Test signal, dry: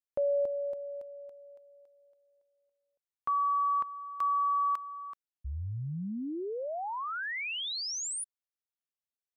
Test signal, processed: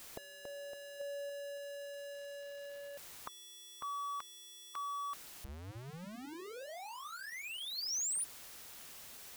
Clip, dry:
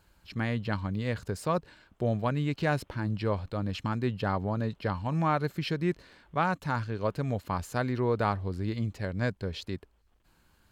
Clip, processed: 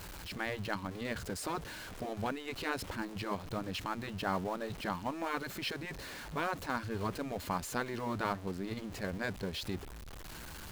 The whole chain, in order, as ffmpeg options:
ffmpeg -i in.wav -af "aeval=exprs='val(0)+0.5*0.0126*sgn(val(0))':channel_layout=same,afftfilt=real='re*lt(hypot(re,im),0.224)':imag='im*lt(hypot(re,im),0.224)':win_size=1024:overlap=0.75,volume=-3dB" out.wav

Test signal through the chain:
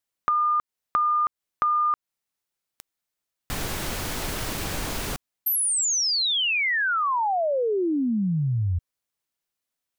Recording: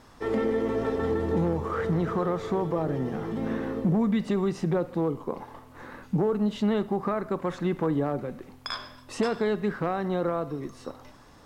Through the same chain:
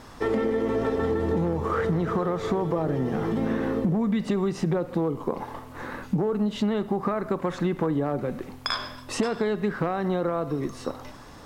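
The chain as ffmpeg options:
ffmpeg -i in.wav -af "acompressor=threshold=-30dB:ratio=4,volume=7.5dB" out.wav

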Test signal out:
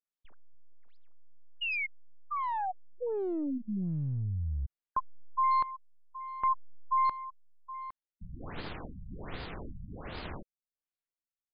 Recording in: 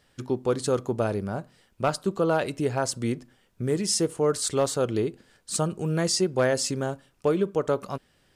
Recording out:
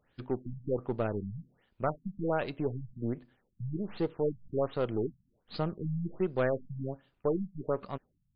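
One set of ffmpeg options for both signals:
ffmpeg -i in.wav -af "aeval=exprs='if(lt(val(0),0),0.708*val(0),val(0))':channel_layout=same,aeval=exprs='0.211*(cos(1*acos(clip(val(0)/0.211,-1,1)))-cos(1*PI/2))+0.0075*(cos(5*acos(clip(val(0)/0.211,-1,1)))-cos(5*PI/2))+0.00335*(cos(6*acos(clip(val(0)/0.211,-1,1)))-cos(6*PI/2))+0.0075*(cos(7*acos(clip(val(0)/0.211,-1,1)))-cos(7*PI/2))':channel_layout=same,afftfilt=real='re*lt(b*sr/1024,200*pow(5100/200,0.5+0.5*sin(2*PI*1.3*pts/sr)))':imag='im*lt(b*sr/1024,200*pow(5100/200,0.5+0.5*sin(2*PI*1.3*pts/sr)))':win_size=1024:overlap=0.75,volume=-5dB" out.wav

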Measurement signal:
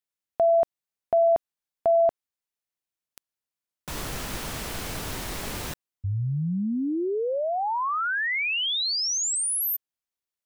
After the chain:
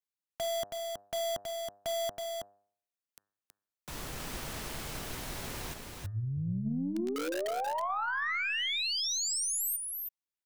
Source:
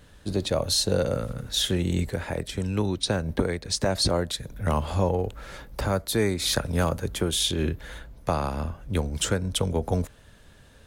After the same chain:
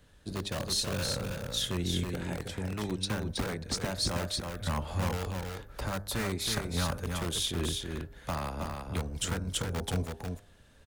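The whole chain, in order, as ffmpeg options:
ffmpeg -i in.wav -filter_complex "[0:a]bandreject=frequency=100.9:width_type=h:width=4,bandreject=frequency=201.8:width_type=h:width=4,bandreject=frequency=302.7:width_type=h:width=4,bandreject=frequency=403.6:width_type=h:width=4,bandreject=frequency=504.5:width_type=h:width=4,bandreject=frequency=605.4:width_type=h:width=4,bandreject=frequency=706.3:width_type=h:width=4,bandreject=frequency=807.2:width_type=h:width=4,bandreject=frequency=908.1:width_type=h:width=4,bandreject=frequency=1009:width_type=h:width=4,bandreject=frequency=1109.9:width_type=h:width=4,bandreject=frequency=1210.8:width_type=h:width=4,bandreject=frequency=1311.7:width_type=h:width=4,bandreject=frequency=1412.6:width_type=h:width=4,bandreject=frequency=1513.5:width_type=h:width=4,bandreject=frequency=1614.4:width_type=h:width=4,bandreject=frequency=1715.3:width_type=h:width=4,bandreject=frequency=1816.2:width_type=h:width=4,acrossover=split=320|670|1900[link_01][link_02][link_03][link_04];[link_02]aeval=exprs='(mod(23.7*val(0)+1,2)-1)/23.7':channel_layout=same[link_05];[link_01][link_05][link_03][link_04]amix=inputs=4:normalize=0,aeval=exprs='0.266*(cos(1*acos(clip(val(0)/0.266,-1,1)))-cos(1*PI/2))+0.00422*(cos(6*acos(clip(val(0)/0.266,-1,1)))-cos(6*PI/2))+0.00531*(cos(7*acos(clip(val(0)/0.266,-1,1)))-cos(7*PI/2))':channel_layout=same,aecho=1:1:323:0.596,volume=-6.5dB" out.wav

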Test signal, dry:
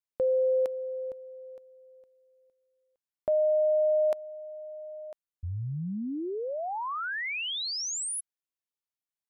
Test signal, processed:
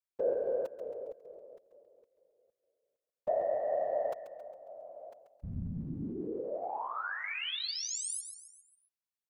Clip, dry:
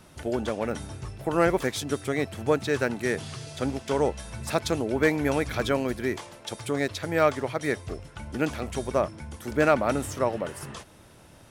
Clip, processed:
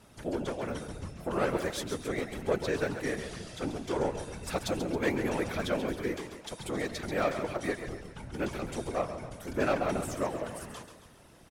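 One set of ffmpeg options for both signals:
ffmpeg -i in.wav -af "asoftclip=type=tanh:threshold=-15.5dB,aecho=1:1:136|272|408|544|680:0.355|0.167|0.0784|0.0368|0.0173,afftfilt=real='hypot(re,im)*cos(2*PI*random(0))':imag='hypot(re,im)*sin(2*PI*random(1))':win_size=512:overlap=0.75,volume=1dB" out.wav

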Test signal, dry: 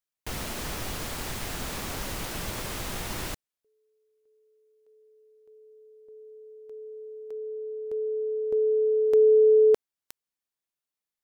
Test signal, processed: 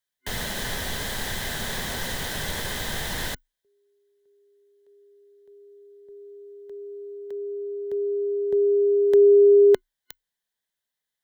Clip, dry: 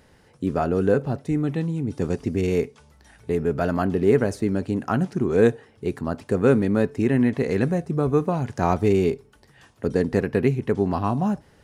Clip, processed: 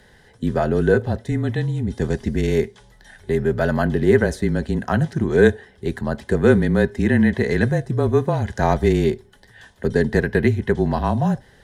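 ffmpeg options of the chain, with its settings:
ffmpeg -i in.wav -af "afreqshift=-28,superequalizer=6b=0.562:10b=0.631:11b=2:12b=0.708:13b=1.78,volume=3.5dB" out.wav

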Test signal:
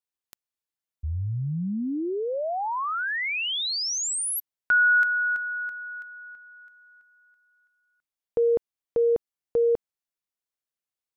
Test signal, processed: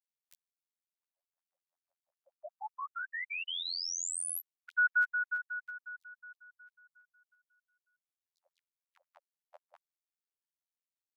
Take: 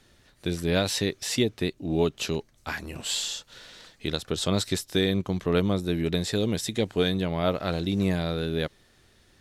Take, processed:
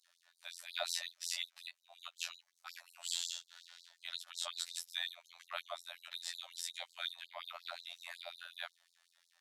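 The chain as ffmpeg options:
ffmpeg -i in.wav -af "afftfilt=real='hypot(re,im)*cos(PI*b)':imag='0':win_size=2048:overlap=0.75,afftfilt=real='re*gte(b*sr/1024,550*pow(3900/550,0.5+0.5*sin(2*PI*5.5*pts/sr)))':imag='im*gte(b*sr/1024,550*pow(3900/550,0.5+0.5*sin(2*PI*5.5*pts/sr)))':win_size=1024:overlap=0.75,volume=-6dB" out.wav

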